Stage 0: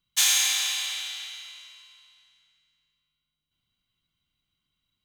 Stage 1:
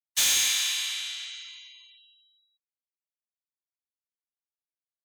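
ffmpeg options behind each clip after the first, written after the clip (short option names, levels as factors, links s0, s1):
-af "afftfilt=real='re*gte(hypot(re,im),0.00316)':imag='im*gte(hypot(re,im),0.00316)':win_size=1024:overlap=0.75,highpass=1200,volume=8.41,asoftclip=hard,volume=0.119"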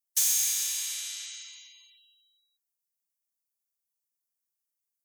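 -af "acompressor=threshold=0.0224:ratio=2.5,aexciter=amount=4:drive=6.4:freq=5000,volume=0.562"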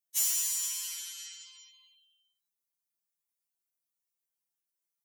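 -af "afftfilt=real='re*2.83*eq(mod(b,8),0)':imag='im*2.83*eq(mod(b,8),0)':win_size=2048:overlap=0.75"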